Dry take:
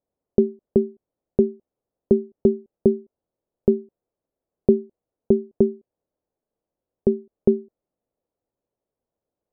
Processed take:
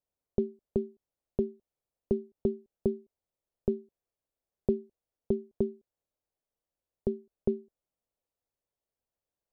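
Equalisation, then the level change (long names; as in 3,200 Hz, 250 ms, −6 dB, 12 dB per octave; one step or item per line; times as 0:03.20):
parametric band 290 Hz −10.5 dB 3 octaves
−2.0 dB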